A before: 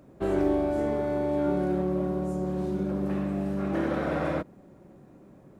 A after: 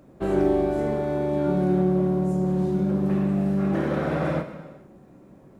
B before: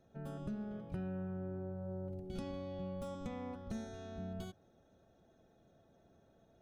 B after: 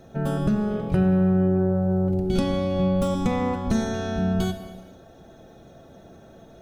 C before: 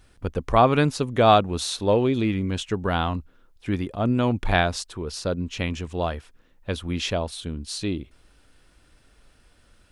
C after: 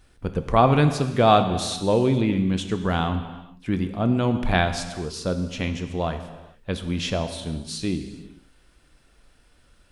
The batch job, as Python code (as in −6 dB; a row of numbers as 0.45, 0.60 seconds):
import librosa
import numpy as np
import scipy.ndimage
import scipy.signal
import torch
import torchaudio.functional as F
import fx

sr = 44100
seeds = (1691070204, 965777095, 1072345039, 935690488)

y = fx.dynamic_eq(x, sr, hz=160.0, q=1.4, threshold_db=-38.0, ratio=4.0, max_db=6)
y = fx.rev_gated(y, sr, seeds[0], gate_ms=480, shape='falling', drr_db=7.5)
y = y * 10.0 ** (-24 / 20.0) / np.sqrt(np.mean(np.square(y)))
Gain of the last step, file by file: +1.5, +19.5, −1.0 decibels